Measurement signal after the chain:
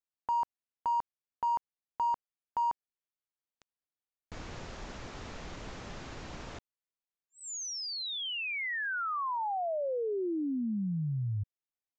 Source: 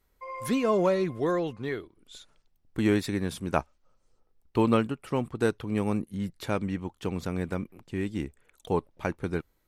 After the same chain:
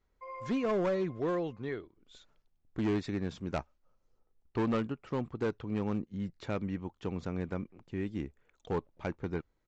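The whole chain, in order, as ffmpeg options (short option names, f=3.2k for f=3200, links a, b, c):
-af "highshelf=f=2.9k:g=-7.5,aresample=16000,asoftclip=type=hard:threshold=-21.5dB,aresample=44100,volume=-4.5dB"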